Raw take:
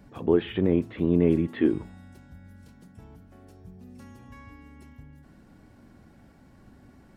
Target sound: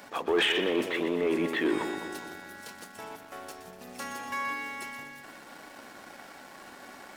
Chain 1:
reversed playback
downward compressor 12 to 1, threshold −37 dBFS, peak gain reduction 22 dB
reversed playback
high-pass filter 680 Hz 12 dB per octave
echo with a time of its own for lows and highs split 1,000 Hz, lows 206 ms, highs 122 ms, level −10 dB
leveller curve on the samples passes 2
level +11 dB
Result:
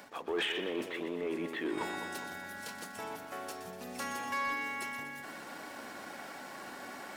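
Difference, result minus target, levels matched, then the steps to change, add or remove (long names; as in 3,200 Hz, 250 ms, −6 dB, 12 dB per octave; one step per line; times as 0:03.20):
downward compressor: peak gain reduction +8.5 dB
change: downward compressor 12 to 1, threshold −27.5 dBFS, peak gain reduction 13 dB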